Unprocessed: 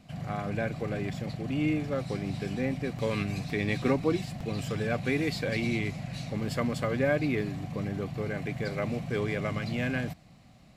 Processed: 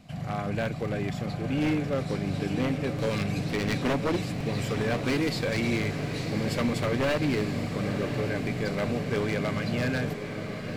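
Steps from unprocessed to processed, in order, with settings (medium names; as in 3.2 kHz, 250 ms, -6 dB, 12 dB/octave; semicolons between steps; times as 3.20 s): wavefolder -23 dBFS; echo that smears into a reverb 1006 ms, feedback 68%, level -8 dB; trim +2.5 dB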